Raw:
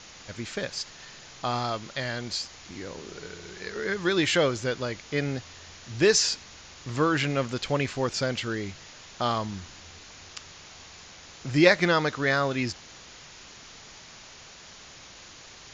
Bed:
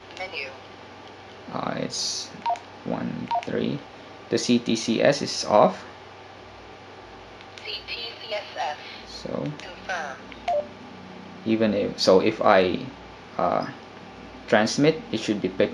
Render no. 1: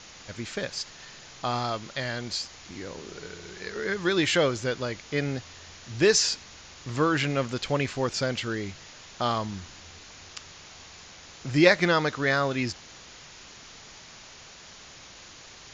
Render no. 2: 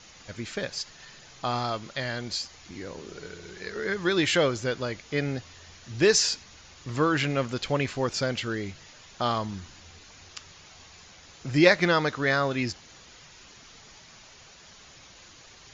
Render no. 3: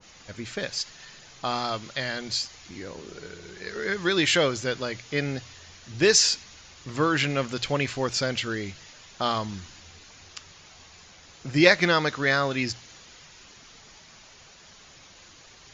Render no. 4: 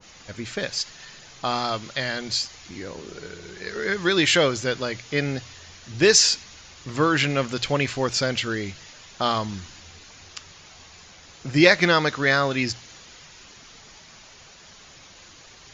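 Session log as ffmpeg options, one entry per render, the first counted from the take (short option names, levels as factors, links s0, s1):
-af anull
-af "afftdn=nr=6:nf=-48"
-af "bandreject=f=60:t=h:w=6,bandreject=f=120:t=h:w=6,adynamicequalizer=threshold=0.0112:dfrequency=1600:dqfactor=0.7:tfrequency=1600:tqfactor=0.7:attack=5:release=100:ratio=0.375:range=2:mode=boostabove:tftype=highshelf"
-af "volume=1.41,alimiter=limit=0.708:level=0:latency=1"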